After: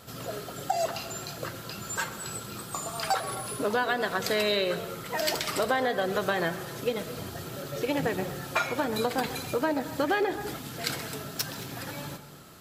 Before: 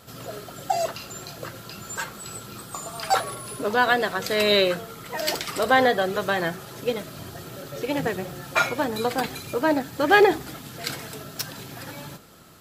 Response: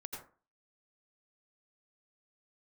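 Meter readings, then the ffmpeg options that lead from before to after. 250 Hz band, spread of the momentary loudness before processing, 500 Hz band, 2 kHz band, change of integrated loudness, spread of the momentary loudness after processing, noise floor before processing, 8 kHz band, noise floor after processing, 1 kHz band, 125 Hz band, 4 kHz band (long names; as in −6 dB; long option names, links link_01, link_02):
−4.0 dB, 18 LU, −5.0 dB, −6.5 dB, −6.0 dB, 11 LU, −42 dBFS, −1.0 dB, −42 dBFS, −6.0 dB, −1.5 dB, −4.5 dB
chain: -filter_complex "[0:a]acompressor=threshold=-23dB:ratio=10,asplit=2[link_01][link_02];[1:a]atrim=start_sample=2205,adelay=131[link_03];[link_02][link_03]afir=irnorm=-1:irlink=0,volume=-11dB[link_04];[link_01][link_04]amix=inputs=2:normalize=0"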